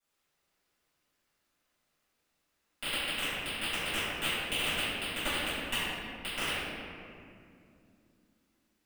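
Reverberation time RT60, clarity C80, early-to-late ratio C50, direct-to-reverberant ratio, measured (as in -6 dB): 2.5 s, -2.0 dB, -4.5 dB, -18.0 dB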